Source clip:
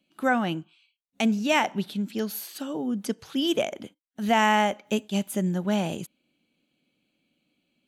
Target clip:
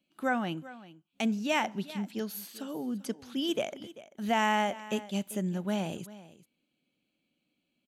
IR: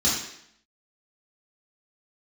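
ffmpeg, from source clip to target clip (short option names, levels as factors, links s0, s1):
-af "aecho=1:1:391:0.133,volume=0.501"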